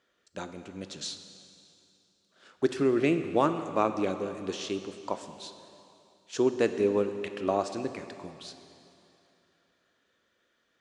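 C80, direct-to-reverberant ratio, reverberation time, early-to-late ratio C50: 10.5 dB, 8.5 dB, 2.8 s, 9.5 dB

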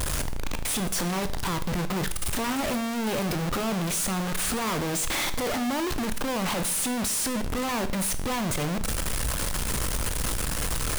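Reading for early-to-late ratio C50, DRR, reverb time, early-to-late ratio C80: 14.5 dB, 10.0 dB, 0.60 s, 17.5 dB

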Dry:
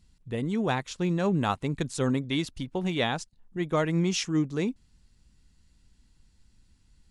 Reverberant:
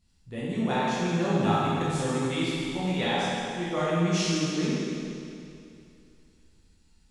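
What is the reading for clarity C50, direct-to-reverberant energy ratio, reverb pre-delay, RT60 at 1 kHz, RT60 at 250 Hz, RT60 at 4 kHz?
-4.5 dB, -10.0 dB, 12 ms, 2.6 s, 2.6 s, 2.5 s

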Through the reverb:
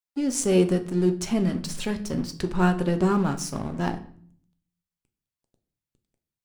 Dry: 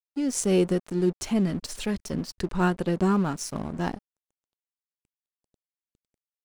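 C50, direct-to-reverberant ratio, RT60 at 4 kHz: 14.5 dB, 7.5 dB, 0.45 s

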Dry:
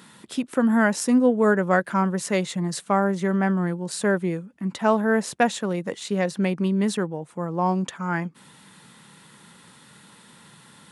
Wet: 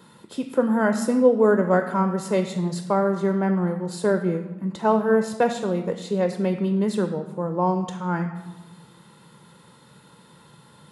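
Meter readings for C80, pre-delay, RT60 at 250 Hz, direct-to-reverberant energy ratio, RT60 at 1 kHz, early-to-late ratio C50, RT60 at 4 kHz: 11.5 dB, 4 ms, 1.8 s, 7.0 dB, 1.2 s, 10.0 dB, 0.70 s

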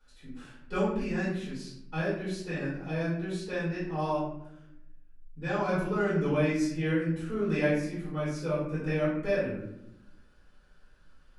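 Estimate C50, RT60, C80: 1.5 dB, not exponential, 5.5 dB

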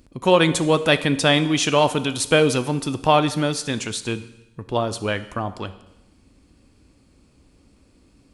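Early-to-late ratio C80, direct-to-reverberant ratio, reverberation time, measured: 16.5 dB, 12.0 dB, 1.0 s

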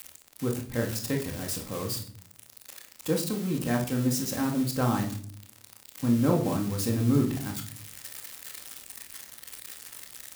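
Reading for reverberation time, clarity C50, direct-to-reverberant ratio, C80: not exponential, 8.0 dB, -10.5 dB, 13.5 dB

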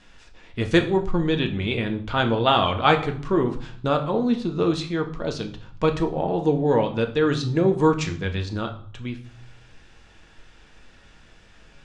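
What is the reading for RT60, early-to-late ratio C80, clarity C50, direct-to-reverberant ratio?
0.55 s, 16.0 dB, 12.5 dB, 4.5 dB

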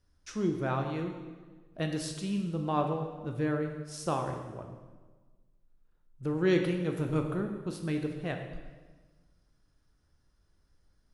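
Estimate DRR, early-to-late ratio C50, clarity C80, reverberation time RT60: 3.5 dB, 6.0 dB, 7.5 dB, 1.4 s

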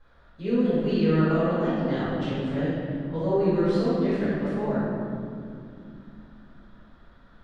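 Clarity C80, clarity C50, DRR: -1.0 dB, -4.0 dB, -14.5 dB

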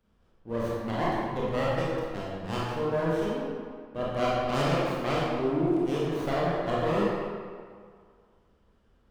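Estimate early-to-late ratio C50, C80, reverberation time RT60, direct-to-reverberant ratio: -2.5 dB, 0.0 dB, 2.0 s, -6.5 dB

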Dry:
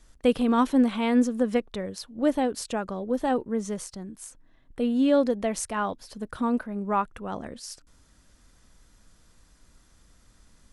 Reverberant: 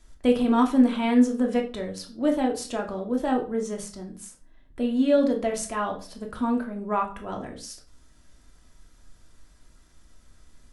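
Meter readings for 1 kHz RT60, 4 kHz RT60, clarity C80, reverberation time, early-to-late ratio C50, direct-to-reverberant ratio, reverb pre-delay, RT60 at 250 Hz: 0.35 s, 0.30 s, 16.5 dB, 0.40 s, 11.0 dB, 1.0 dB, 3 ms, 0.50 s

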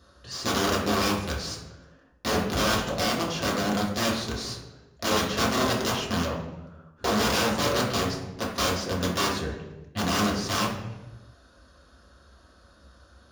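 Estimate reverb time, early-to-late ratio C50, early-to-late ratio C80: 1.1 s, 4.0 dB, 7.0 dB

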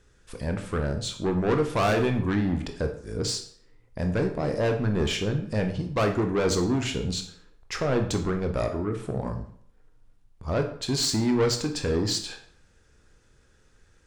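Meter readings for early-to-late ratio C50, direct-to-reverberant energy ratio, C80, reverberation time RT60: 9.5 dB, 4.5 dB, 13.0 dB, 0.60 s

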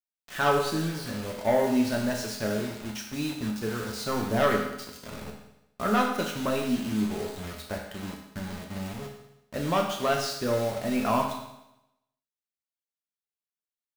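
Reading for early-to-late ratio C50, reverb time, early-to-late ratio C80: 5.0 dB, 0.85 s, 7.0 dB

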